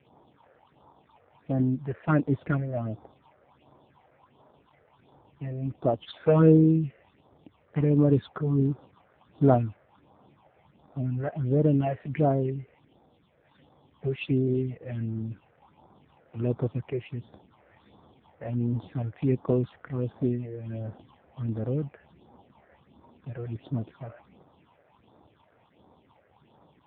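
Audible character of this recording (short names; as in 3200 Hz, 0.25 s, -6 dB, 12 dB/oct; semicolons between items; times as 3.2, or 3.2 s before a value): phasing stages 6, 1.4 Hz, lowest notch 240–2800 Hz; AMR-NB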